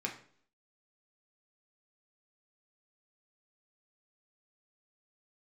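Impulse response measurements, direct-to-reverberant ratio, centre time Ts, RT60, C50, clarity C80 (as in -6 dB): 0.0 dB, 18 ms, 0.55 s, 10.0 dB, 14.0 dB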